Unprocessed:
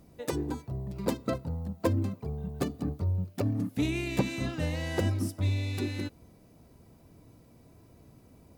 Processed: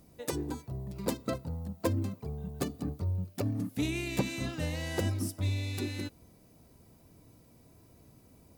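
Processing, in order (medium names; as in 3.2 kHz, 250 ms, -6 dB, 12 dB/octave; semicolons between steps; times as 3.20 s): treble shelf 4.2 kHz +7 dB; trim -3 dB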